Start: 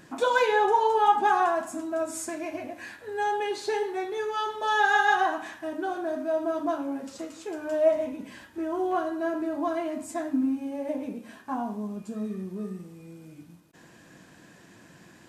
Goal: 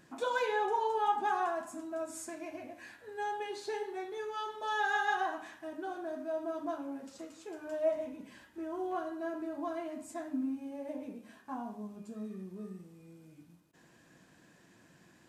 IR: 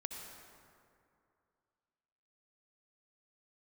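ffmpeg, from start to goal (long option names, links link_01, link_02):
-af "bandreject=frequency=101.5:width_type=h:width=4,bandreject=frequency=203:width_type=h:width=4,bandreject=frequency=304.5:width_type=h:width=4,bandreject=frequency=406:width_type=h:width=4,bandreject=frequency=507.5:width_type=h:width=4,bandreject=frequency=609:width_type=h:width=4,bandreject=frequency=710.5:width_type=h:width=4,bandreject=frequency=812:width_type=h:width=4,bandreject=frequency=913.5:width_type=h:width=4,bandreject=frequency=1015:width_type=h:width=4,bandreject=frequency=1116.5:width_type=h:width=4,bandreject=frequency=1218:width_type=h:width=4,bandreject=frequency=1319.5:width_type=h:width=4,bandreject=frequency=1421:width_type=h:width=4,bandreject=frequency=1522.5:width_type=h:width=4,bandreject=frequency=1624:width_type=h:width=4,bandreject=frequency=1725.5:width_type=h:width=4,bandreject=frequency=1827:width_type=h:width=4,bandreject=frequency=1928.5:width_type=h:width=4,bandreject=frequency=2030:width_type=h:width=4,bandreject=frequency=2131.5:width_type=h:width=4,bandreject=frequency=2233:width_type=h:width=4,bandreject=frequency=2334.5:width_type=h:width=4,bandreject=frequency=2436:width_type=h:width=4,bandreject=frequency=2537.5:width_type=h:width=4,bandreject=frequency=2639:width_type=h:width=4,bandreject=frequency=2740.5:width_type=h:width=4,bandreject=frequency=2842:width_type=h:width=4,bandreject=frequency=2943.5:width_type=h:width=4,bandreject=frequency=3045:width_type=h:width=4,bandreject=frequency=3146.5:width_type=h:width=4,bandreject=frequency=3248:width_type=h:width=4,volume=-9dB"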